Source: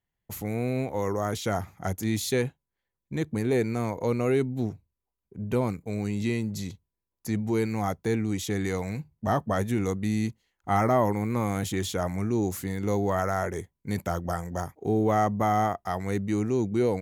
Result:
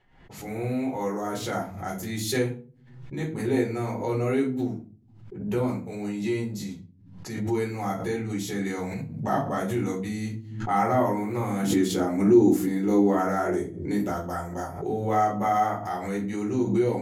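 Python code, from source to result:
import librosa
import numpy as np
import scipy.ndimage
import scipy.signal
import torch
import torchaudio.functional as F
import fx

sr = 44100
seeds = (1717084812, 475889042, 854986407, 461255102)

y = fx.low_shelf(x, sr, hz=130.0, db=-9.0)
y = fx.room_shoebox(y, sr, seeds[0], volume_m3=200.0, walls='furnished', distance_m=4.1)
y = fx.env_lowpass(y, sr, base_hz=2700.0, full_db=-24.5)
y = fx.peak_eq(y, sr, hz=300.0, db=11.0, octaves=0.95, at=(11.63, 14.12))
y = fx.pre_swell(y, sr, db_per_s=68.0)
y = F.gain(torch.from_numpy(y), -8.5).numpy()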